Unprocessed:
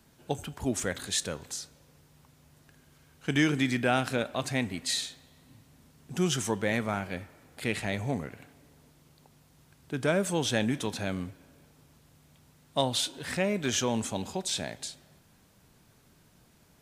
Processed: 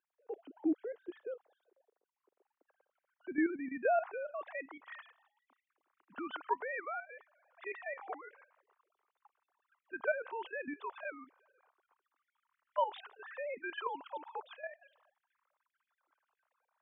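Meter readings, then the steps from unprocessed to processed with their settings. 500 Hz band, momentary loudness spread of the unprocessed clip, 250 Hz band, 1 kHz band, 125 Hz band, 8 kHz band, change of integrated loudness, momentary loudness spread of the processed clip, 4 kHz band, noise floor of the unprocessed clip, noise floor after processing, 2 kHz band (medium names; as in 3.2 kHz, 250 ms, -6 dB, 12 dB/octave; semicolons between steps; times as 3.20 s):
-7.0 dB, 12 LU, -10.0 dB, -3.0 dB, under -40 dB, under -40 dB, -9.0 dB, 16 LU, -23.5 dB, -62 dBFS, under -85 dBFS, -8.0 dB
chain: formants replaced by sine waves; band-pass sweep 340 Hz -> 1.1 kHz, 1.52–4.94 s; level held to a coarse grid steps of 11 dB; trim +5 dB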